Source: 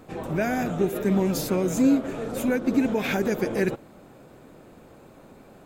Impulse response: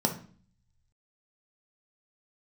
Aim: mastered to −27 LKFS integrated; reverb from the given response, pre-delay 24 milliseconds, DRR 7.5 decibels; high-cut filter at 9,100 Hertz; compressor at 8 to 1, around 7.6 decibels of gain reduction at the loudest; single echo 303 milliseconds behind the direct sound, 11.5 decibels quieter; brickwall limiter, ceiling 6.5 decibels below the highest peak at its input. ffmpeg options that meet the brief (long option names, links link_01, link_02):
-filter_complex "[0:a]lowpass=9100,acompressor=threshold=-23dB:ratio=8,alimiter=limit=-21.5dB:level=0:latency=1,aecho=1:1:303:0.266,asplit=2[link_01][link_02];[1:a]atrim=start_sample=2205,adelay=24[link_03];[link_02][link_03]afir=irnorm=-1:irlink=0,volume=-16.5dB[link_04];[link_01][link_04]amix=inputs=2:normalize=0,volume=1dB"